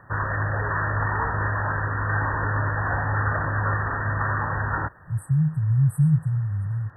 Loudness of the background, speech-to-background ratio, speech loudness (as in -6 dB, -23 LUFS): -25.0 LUFS, 2.0 dB, -23.0 LUFS